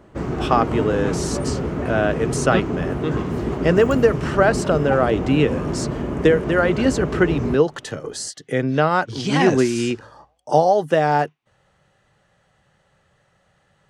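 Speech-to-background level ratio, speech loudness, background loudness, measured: 5.0 dB, −20.0 LKFS, −25.0 LKFS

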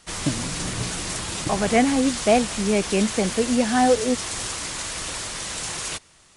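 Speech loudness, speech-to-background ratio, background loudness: −22.0 LKFS, 6.0 dB, −28.0 LKFS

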